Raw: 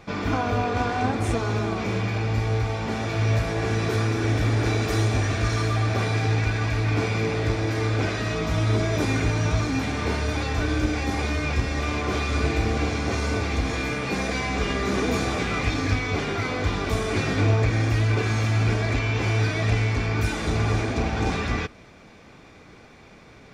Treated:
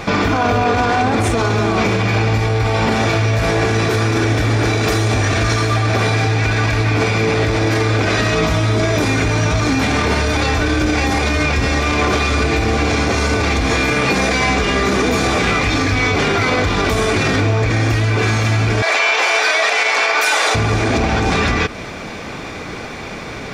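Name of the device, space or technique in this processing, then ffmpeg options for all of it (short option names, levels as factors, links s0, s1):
loud club master: -filter_complex "[0:a]asettb=1/sr,asplit=3[s0][s1][s2];[s0]atrim=end=18.824[s3];[s1]atrim=start=18.82:end=20.55,asetpts=PTS-STARTPTS,afade=t=in:d=0.004:c=qsin,afade=t=out:st=1.726:d=0.004:c=qsin,highpass=f=550:w=0.5412,highpass=f=550:w=1.3066[s4];[s2]atrim=start=20.546[s5];[s3][s4]acrossfade=d=0.004:c1=hsin:c2=qsin[s6];[s6][s5]acrossfade=d=0.004:c1=qsin:c2=hsin,acompressor=threshold=0.0251:ratio=1.5,asoftclip=type=hard:threshold=0.126,alimiter=level_in=21.1:limit=0.891:release=50:level=0:latency=1,asettb=1/sr,asplit=3[s7][s8][s9];[s7]atrim=end=2.464[s10];[s8]atrim=start=2.46:end=2.96,asetpts=PTS-STARTPTS,afade=t=in:d=0.004:c=qsin,afade=t=out:st=0.496:d=0.004:c=qsin,bandreject=f=6300:w=12[s11];[s9]atrim=start=2.956[s12];[s10][s11]acrossfade=d=0.004:c1=hsin:c2=qsin[s13];[s13][s12]acrossfade=d=0.004:c1=qsin:c2=hsin,lowshelf=f=280:g=-4,volume=0.562"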